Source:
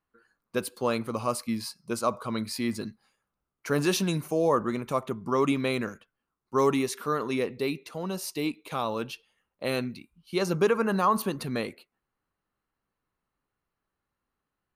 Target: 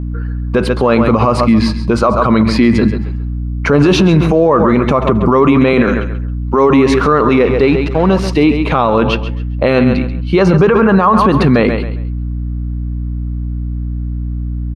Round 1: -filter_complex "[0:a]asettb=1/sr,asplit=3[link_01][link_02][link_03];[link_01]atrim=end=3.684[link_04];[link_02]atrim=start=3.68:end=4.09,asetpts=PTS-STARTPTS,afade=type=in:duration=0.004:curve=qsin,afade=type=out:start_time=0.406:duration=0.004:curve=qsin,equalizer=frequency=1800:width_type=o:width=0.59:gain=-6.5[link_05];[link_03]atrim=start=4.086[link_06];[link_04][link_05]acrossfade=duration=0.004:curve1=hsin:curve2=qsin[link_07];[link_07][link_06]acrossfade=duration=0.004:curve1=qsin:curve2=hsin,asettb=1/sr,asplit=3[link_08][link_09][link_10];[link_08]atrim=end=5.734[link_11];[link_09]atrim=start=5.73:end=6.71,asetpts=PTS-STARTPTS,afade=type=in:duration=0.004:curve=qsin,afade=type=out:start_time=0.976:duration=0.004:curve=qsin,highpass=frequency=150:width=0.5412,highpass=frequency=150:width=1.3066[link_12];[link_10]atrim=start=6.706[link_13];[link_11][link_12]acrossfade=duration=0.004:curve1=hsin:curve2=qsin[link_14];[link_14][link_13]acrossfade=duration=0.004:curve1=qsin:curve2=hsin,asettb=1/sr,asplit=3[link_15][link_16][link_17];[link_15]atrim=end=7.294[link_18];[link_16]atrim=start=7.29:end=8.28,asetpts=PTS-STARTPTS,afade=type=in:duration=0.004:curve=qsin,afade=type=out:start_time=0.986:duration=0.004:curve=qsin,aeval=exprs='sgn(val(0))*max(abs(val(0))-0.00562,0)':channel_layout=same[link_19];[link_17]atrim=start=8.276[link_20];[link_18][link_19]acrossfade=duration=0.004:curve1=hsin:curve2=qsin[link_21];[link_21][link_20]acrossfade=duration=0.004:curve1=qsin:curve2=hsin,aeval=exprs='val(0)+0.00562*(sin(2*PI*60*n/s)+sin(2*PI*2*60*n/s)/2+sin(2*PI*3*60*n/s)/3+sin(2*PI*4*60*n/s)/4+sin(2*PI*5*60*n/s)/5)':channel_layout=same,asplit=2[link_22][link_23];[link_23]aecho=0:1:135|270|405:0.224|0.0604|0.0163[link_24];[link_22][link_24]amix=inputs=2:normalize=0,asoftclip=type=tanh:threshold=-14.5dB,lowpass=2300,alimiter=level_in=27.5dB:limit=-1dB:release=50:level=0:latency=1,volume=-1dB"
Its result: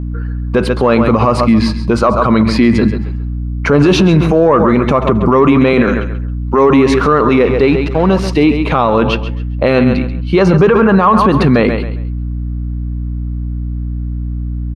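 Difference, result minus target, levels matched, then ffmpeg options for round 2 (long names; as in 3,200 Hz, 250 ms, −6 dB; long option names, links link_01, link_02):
soft clipping: distortion +14 dB
-filter_complex "[0:a]asettb=1/sr,asplit=3[link_01][link_02][link_03];[link_01]atrim=end=3.684[link_04];[link_02]atrim=start=3.68:end=4.09,asetpts=PTS-STARTPTS,afade=type=in:duration=0.004:curve=qsin,afade=type=out:start_time=0.406:duration=0.004:curve=qsin,equalizer=frequency=1800:width_type=o:width=0.59:gain=-6.5[link_05];[link_03]atrim=start=4.086[link_06];[link_04][link_05]acrossfade=duration=0.004:curve1=hsin:curve2=qsin[link_07];[link_07][link_06]acrossfade=duration=0.004:curve1=qsin:curve2=hsin,asettb=1/sr,asplit=3[link_08][link_09][link_10];[link_08]atrim=end=5.734[link_11];[link_09]atrim=start=5.73:end=6.71,asetpts=PTS-STARTPTS,afade=type=in:duration=0.004:curve=qsin,afade=type=out:start_time=0.976:duration=0.004:curve=qsin,highpass=frequency=150:width=0.5412,highpass=frequency=150:width=1.3066[link_12];[link_10]atrim=start=6.706[link_13];[link_11][link_12]acrossfade=duration=0.004:curve1=hsin:curve2=qsin[link_14];[link_14][link_13]acrossfade=duration=0.004:curve1=qsin:curve2=hsin,asettb=1/sr,asplit=3[link_15][link_16][link_17];[link_15]atrim=end=7.294[link_18];[link_16]atrim=start=7.29:end=8.28,asetpts=PTS-STARTPTS,afade=type=in:duration=0.004:curve=qsin,afade=type=out:start_time=0.986:duration=0.004:curve=qsin,aeval=exprs='sgn(val(0))*max(abs(val(0))-0.00562,0)':channel_layout=same[link_19];[link_17]atrim=start=8.276[link_20];[link_18][link_19]acrossfade=duration=0.004:curve1=hsin:curve2=qsin[link_21];[link_21][link_20]acrossfade=duration=0.004:curve1=qsin:curve2=hsin,aeval=exprs='val(0)+0.00562*(sin(2*PI*60*n/s)+sin(2*PI*2*60*n/s)/2+sin(2*PI*3*60*n/s)/3+sin(2*PI*4*60*n/s)/4+sin(2*PI*5*60*n/s)/5)':channel_layout=same,asplit=2[link_22][link_23];[link_23]aecho=0:1:135|270|405:0.224|0.0604|0.0163[link_24];[link_22][link_24]amix=inputs=2:normalize=0,asoftclip=type=tanh:threshold=-6.5dB,lowpass=2300,alimiter=level_in=27.5dB:limit=-1dB:release=50:level=0:latency=1,volume=-1dB"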